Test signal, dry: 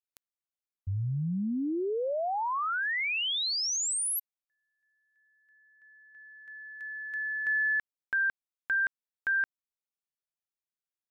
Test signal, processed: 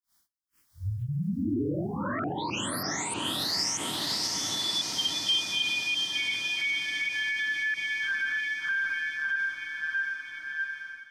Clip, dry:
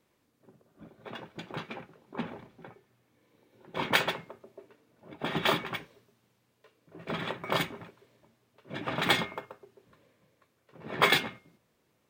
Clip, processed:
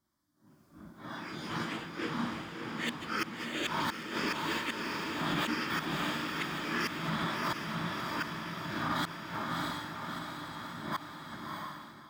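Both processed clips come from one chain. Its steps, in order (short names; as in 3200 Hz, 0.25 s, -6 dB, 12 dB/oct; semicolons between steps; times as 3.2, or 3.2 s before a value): phase scrambler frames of 0.2 s; fixed phaser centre 1100 Hz, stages 4; flipped gate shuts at -23 dBFS, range -38 dB; echoes that change speed 0.471 s, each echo +6 st, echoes 2; diffused feedback echo 0.653 s, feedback 64%, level -4 dB; AGC gain up to 11 dB; limiter -17.5 dBFS; thirty-one-band EQ 125 Hz -5 dB, 315 Hz +5 dB, 800 Hz -6 dB, 3150 Hz +6 dB, 5000 Hz +6 dB; gain -5.5 dB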